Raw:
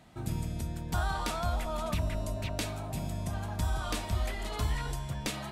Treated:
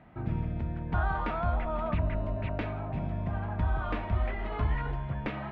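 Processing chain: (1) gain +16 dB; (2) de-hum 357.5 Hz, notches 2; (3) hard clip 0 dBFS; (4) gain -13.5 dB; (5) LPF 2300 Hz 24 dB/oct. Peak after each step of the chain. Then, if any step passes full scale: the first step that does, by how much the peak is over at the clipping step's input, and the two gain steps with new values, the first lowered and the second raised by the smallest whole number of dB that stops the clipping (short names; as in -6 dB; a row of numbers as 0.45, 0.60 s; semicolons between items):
-3.0, -3.0, -3.0, -16.5, -18.0 dBFS; no overload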